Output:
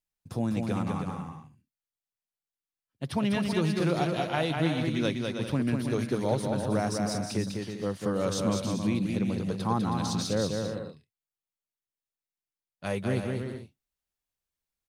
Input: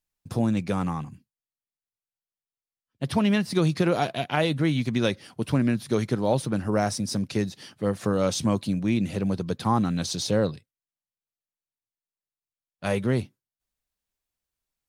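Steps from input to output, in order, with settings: bouncing-ball echo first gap 0.2 s, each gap 0.6×, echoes 5; gain -5.5 dB

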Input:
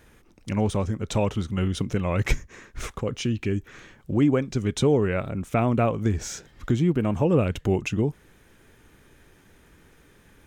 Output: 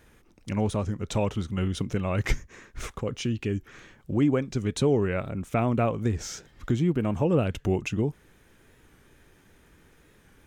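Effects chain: record warp 45 rpm, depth 100 cents; gain -2.5 dB

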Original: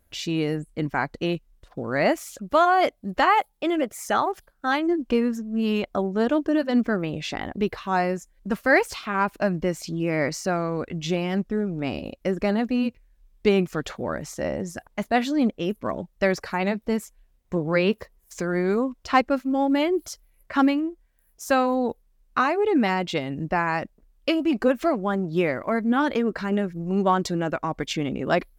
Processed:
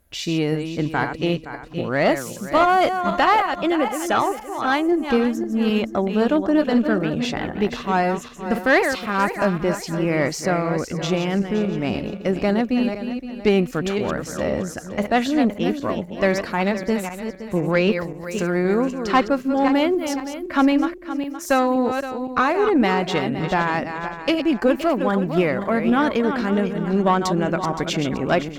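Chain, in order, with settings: regenerating reverse delay 0.259 s, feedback 54%, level -8 dB; tube stage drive 11 dB, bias 0.3; gain +4 dB

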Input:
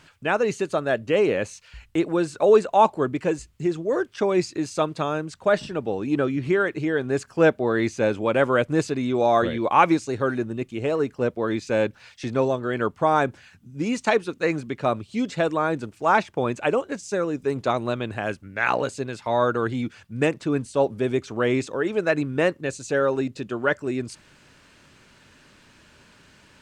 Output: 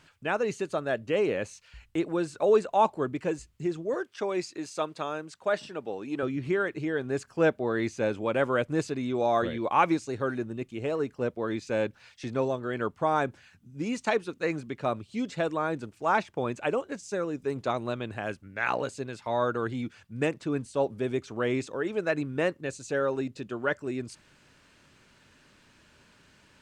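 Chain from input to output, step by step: 3.94–6.23 HPF 370 Hz 6 dB/oct; gain -6 dB

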